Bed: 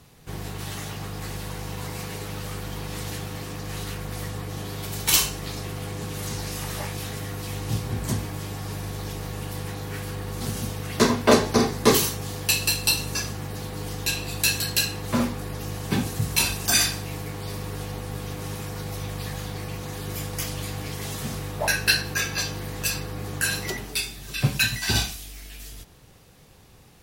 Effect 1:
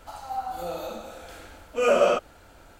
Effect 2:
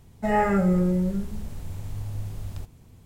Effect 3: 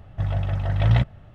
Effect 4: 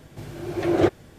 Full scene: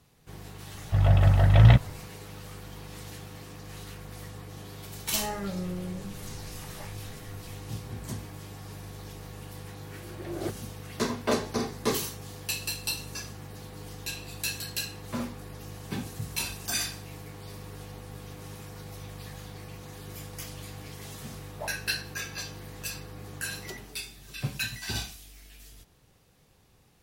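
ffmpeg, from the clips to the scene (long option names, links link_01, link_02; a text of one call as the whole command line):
ffmpeg -i bed.wav -i cue0.wav -i cue1.wav -i cue2.wav -i cue3.wav -filter_complex "[0:a]volume=-10dB[link_01];[3:a]dynaudnorm=framelen=100:gausssize=5:maxgain=10dB,atrim=end=1.34,asetpts=PTS-STARTPTS,volume=-4dB,afade=type=in:duration=0.004:curve=hsin,afade=type=out:start_time=1.336:duration=0.004:curve=hsin,adelay=740[link_02];[2:a]atrim=end=3.05,asetpts=PTS-STARTPTS,volume=-13dB,afade=type=in:duration=0.004:curve=hsin,afade=type=out:start_time=3.046:duration=0.004:curve=hsin,adelay=4900[link_03];[4:a]atrim=end=1.18,asetpts=PTS-STARTPTS,volume=-15dB,afade=type=in:duration=0.004:curve=hsin,afade=type=out:start_time=1.176:duration=0.004:curve=hsin,adelay=424242S[link_04];[link_01][link_02][link_03][link_04]amix=inputs=4:normalize=0" out.wav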